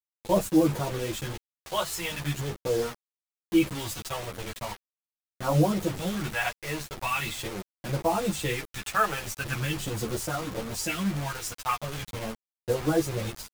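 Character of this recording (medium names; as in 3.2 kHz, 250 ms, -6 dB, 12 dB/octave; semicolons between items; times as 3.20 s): phasing stages 2, 0.41 Hz, lowest notch 240–2800 Hz; a quantiser's noise floor 6-bit, dither none; a shimmering, thickened sound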